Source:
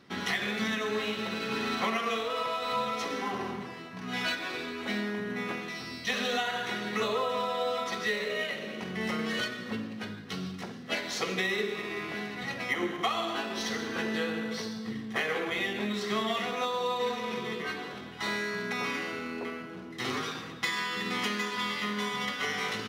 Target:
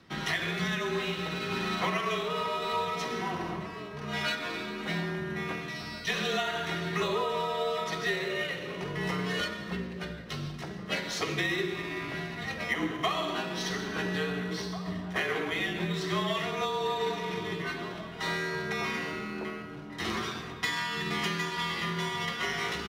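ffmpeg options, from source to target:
ffmpeg -i in.wav -filter_complex "[0:a]afreqshift=-38,asplit=2[link_01][link_02];[link_02]adelay=1691,volume=-10dB,highshelf=frequency=4000:gain=-38[link_03];[link_01][link_03]amix=inputs=2:normalize=0" out.wav

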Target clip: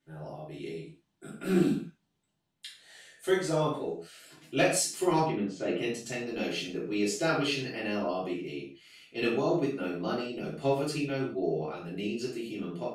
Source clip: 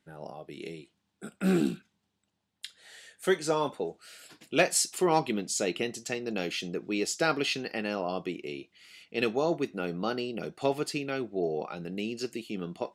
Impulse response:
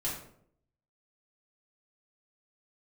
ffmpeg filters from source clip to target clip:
-filter_complex "[0:a]asplit=3[link_01][link_02][link_03];[link_01]afade=type=out:start_time=5.25:duration=0.02[link_04];[link_02]lowpass=2400,afade=type=in:start_time=5.25:duration=0.02,afade=type=out:start_time=5.77:duration=0.02[link_05];[link_03]afade=type=in:start_time=5.77:duration=0.02[link_06];[link_04][link_05][link_06]amix=inputs=3:normalize=0[link_07];[1:a]atrim=start_sample=2205,afade=type=out:start_time=0.22:duration=0.01,atrim=end_sample=10143[link_08];[link_07][link_08]afir=irnorm=-1:irlink=0,volume=-5dB"

